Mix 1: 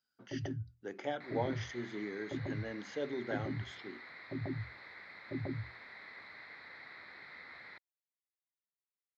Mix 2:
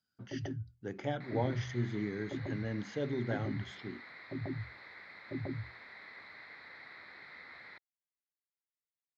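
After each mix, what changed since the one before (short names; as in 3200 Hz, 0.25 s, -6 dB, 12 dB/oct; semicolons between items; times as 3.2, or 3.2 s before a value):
speech: remove HPF 320 Hz 12 dB/oct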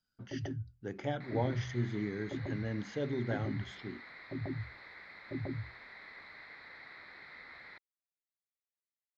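master: remove HPF 76 Hz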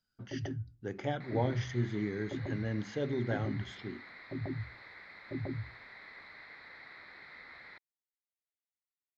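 reverb: on, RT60 0.50 s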